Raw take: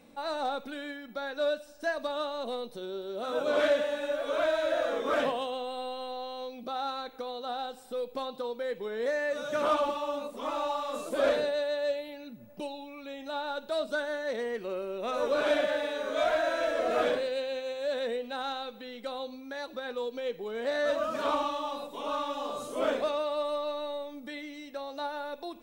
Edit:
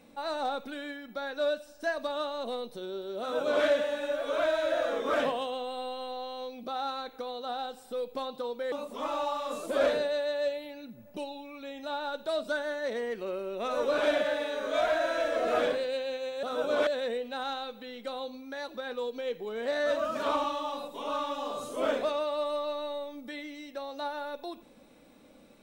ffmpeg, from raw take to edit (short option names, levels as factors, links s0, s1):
-filter_complex "[0:a]asplit=4[s0][s1][s2][s3];[s0]atrim=end=8.722[s4];[s1]atrim=start=10.148:end=17.862[s5];[s2]atrim=start=3.198:end=3.642[s6];[s3]atrim=start=17.858[s7];[s4][s5]acrossfade=d=0.004:c1=hsin:c2=hsin[s8];[s8][s6]acrossfade=d=0.004:c1=hsin:c2=hsin[s9];[s9][s7]acrossfade=d=0.004:c1=hsin:c2=hsin"